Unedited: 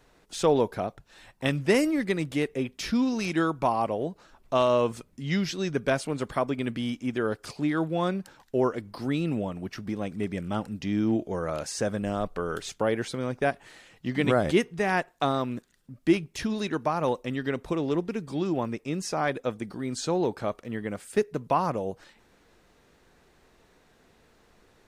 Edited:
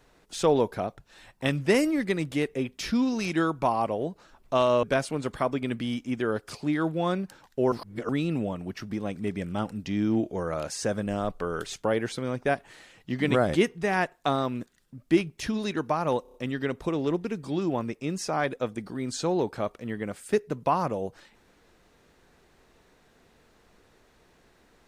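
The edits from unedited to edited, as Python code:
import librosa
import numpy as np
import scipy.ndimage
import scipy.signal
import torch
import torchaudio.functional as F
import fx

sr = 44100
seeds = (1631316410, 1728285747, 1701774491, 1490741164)

y = fx.edit(x, sr, fx.cut(start_s=4.83, length_s=0.96),
    fx.reverse_span(start_s=8.68, length_s=0.37),
    fx.stutter(start_s=17.18, slice_s=0.03, count=5), tone=tone)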